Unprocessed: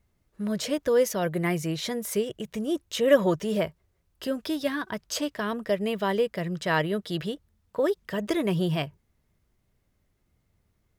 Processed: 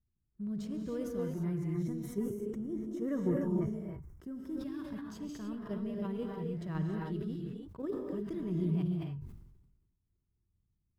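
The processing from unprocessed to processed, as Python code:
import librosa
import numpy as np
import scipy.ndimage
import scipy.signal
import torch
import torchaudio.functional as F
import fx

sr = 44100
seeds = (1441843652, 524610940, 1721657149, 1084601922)

p1 = fx.law_mismatch(x, sr, coded='A')
p2 = fx.level_steps(p1, sr, step_db=23)
p3 = p1 + F.gain(torch.from_numpy(p2), 1.0).numpy()
p4 = fx.curve_eq(p3, sr, hz=(120.0, 370.0, 530.0, 1200.0, 1800.0), db=(0, -8, -23, -17, -24))
p5 = fx.rev_gated(p4, sr, seeds[0], gate_ms=330, shape='rising', drr_db=-0.5)
p6 = fx.spec_box(p5, sr, start_s=1.74, length_s=2.85, low_hz=2300.0, high_hz=5200.0, gain_db=-11)
p7 = fx.sustainer(p6, sr, db_per_s=50.0)
y = F.gain(torch.from_numpy(p7), -5.0).numpy()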